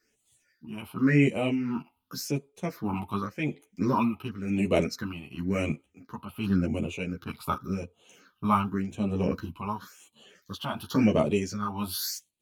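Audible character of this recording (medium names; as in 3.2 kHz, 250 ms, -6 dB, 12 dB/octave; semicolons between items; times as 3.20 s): phasing stages 6, 0.91 Hz, lowest notch 450–1500 Hz; tremolo triangle 1.1 Hz, depth 75%; a shimmering, thickened sound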